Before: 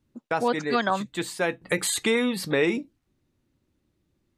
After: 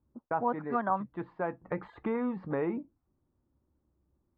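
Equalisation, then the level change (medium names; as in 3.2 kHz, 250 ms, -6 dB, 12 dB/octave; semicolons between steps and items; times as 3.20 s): peaking EQ 66 Hz +11.5 dB 0.33 oct; dynamic bell 450 Hz, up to -5 dB, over -36 dBFS, Q 1.5; four-pole ladder low-pass 1.3 kHz, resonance 35%; +2.0 dB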